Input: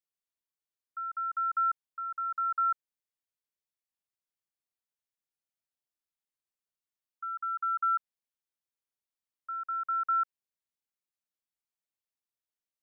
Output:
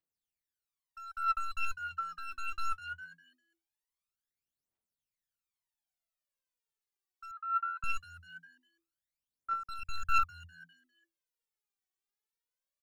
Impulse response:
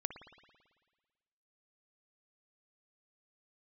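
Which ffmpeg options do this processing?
-filter_complex "[0:a]aeval=exprs='clip(val(0),-1,0.02)':c=same,asplit=5[a][b][c][d][e];[b]adelay=201,afreqshift=83,volume=-14.5dB[f];[c]adelay=402,afreqshift=166,volume=-22.7dB[g];[d]adelay=603,afreqshift=249,volume=-30.9dB[h];[e]adelay=804,afreqshift=332,volume=-39dB[i];[a][f][g][h][i]amix=inputs=5:normalize=0,aphaser=in_gain=1:out_gain=1:delay=2.7:decay=0.8:speed=0.21:type=triangular,asettb=1/sr,asplit=3[j][k][l];[j]atrim=end=7.314[m];[k]atrim=start=7.31:end=7.84,asetpts=PTS-STARTPTS,afade=t=in:d=0.004:c=qsin,afade=t=out:st=0.526:d=0.004:c=qsin,asuperpass=centerf=1300:order=4:qfactor=1.1[n];[l]atrim=start=7.836[o];[m][n]acrossfade=d=0.004:c1=hsin:c2=qsin[p];[p][o]acrossfade=d=0.004:c1=qsin:c2=hsin,asettb=1/sr,asplit=3[q][r][s];[q]atrim=end=9.794[t];[r]atrim=start=9.79:end=10.19,asetpts=PTS-STARTPTS,afade=t=in:d=0.004:c=qsin,afade=t=out:st=0.396:d=0.004:c=qsin,aecho=1:1:1.2:0.59,atrim=end_sample=17640[u];[s]atrim=start=10.186[v];[t][u]acrossfade=d=0.004:c1=hsin:c2=qsin[w];[w][v]acrossfade=d=0.004:c1=qsin:c2=hsin,volume=-5.5dB"

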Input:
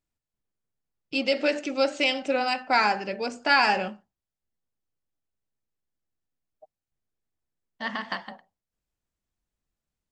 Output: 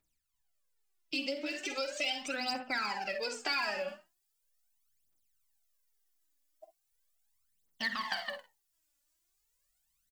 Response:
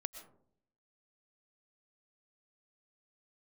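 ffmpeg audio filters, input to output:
-filter_complex "[0:a]aphaser=in_gain=1:out_gain=1:delay=3.6:decay=0.79:speed=0.39:type=triangular,aecho=1:1:49|61:0.299|0.188,acrossover=split=460[a][b];[b]acompressor=threshold=-31dB:ratio=2.5[c];[a][c]amix=inputs=2:normalize=0,asetnsamples=n=441:p=0,asendcmd='3.88 highshelf g 11.5',highshelf=f=5.2k:g=4.5,acompressor=threshold=-28dB:ratio=4,tiltshelf=f=740:g=-5.5,volume=-5dB"

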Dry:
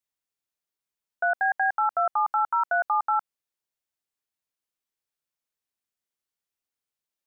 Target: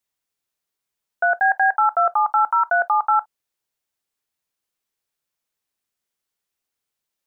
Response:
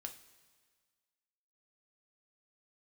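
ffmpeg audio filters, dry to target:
-filter_complex "[0:a]asplit=2[a][b];[1:a]atrim=start_sample=2205,atrim=end_sample=3969,asetrate=61740,aresample=44100[c];[b][c]afir=irnorm=-1:irlink=0,volume=-2.5dB[d];[a][d]amix=inputs=2:normalize=0,volume=4dB"

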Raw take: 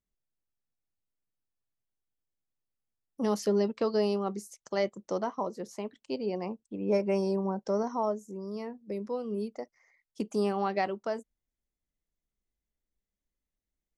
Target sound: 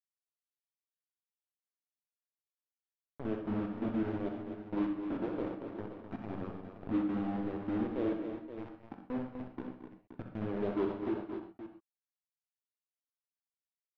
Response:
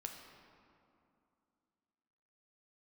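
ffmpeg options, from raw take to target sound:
-filter_complex "[0:a]agate=range=-37dB:threshold=-51dB:ratio=16:detection=peak,highpass=130,lowshelf=f=390:t=q:w=1.5:g=-11.5,bandreject=f=60:t=h:w=6,bandreject=f=120:t=h:w=6,bandreject=f=180:t=h:w=6,bandreject=f=240:t=h:w=6,bandreject=f=300:t=h:w=6,bandreject=f=360:t=h:w=6,bandreject=f=420:t=h:w=6,bandreject=f=480:t=h:w=6,bandreject=f=540:t=h:w=6,asplit=2[a][b];[b]acompressor=threshold=-40dB:ratio=16,volume=-2dB[c];[a][c]amix=inputs=2:normalize=0,asetrate=22696,aresample=44100,atempo=1.94306,aresample=8000,acrusher=bits=4:mix=0:aa=0.000001,aresample=44100,adynamicsmooth=sensitivity=0.5:basefreq=650,aecho=1:1:64|223|255|523:0.376|0.2|0.376|0.282[d];[1:a]atrim=start_sample=2205,atrim=end_sample=6174[e];[d][e]afir=irnorm=-1:irlink=0,volume=-2dB"

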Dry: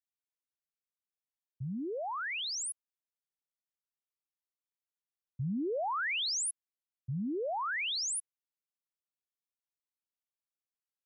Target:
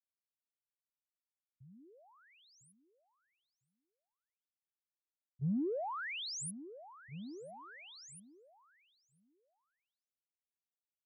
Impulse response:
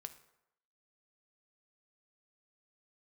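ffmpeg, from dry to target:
-filter_complex "[0:a]agate=range=-48dB:threshold=-30dB:ratio=16:detection=peak,lowshelf=f=470:g=11.5,asplit=2[a][b];[b]adelay=1002,lowpass=f=1.7k:p=1,volume=-14dB,asplit=2[c][d];[d]adelay=1002,lowpass=f=1.7k:p=1,volume=0.17[e];[a][c][e]amix=inputs=3:normalize=0,volume=17.5dB"

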